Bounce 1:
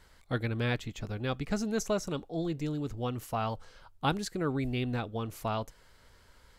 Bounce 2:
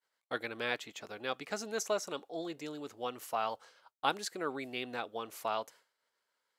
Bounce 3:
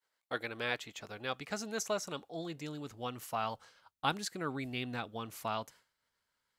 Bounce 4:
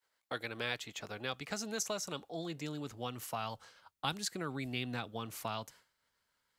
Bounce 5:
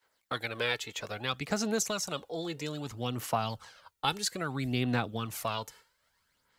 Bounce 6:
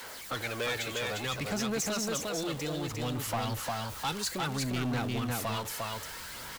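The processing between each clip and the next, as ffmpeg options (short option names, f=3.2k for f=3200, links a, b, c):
-af "highpass=480,agate=range=-33dB:threshold=-51dB:ratio=3:detection=peak"
-af "asubboost=boost=8:cutoff=160"
-filter_complex "[0:a]acrossover=split=150|3000[a][b][c];[b]acompressor=threshold=-41dB:ratio=2.5[d];[a][d][c]amix=inputs=3:normalize=0,volume=2.5dB"
-af "aphaser=in_gain=1:out_gain=1:delay=2.3:decay=0.48:speed=0.61:type=sinusoidal,volume=5dB"
-af "aeval=exprs='val(0)+0.5*0.0126*sgn(val(0))':c=same,aecho=1:1:352:0.668,asoftclip=type=tanh:threshold=-26.5dB"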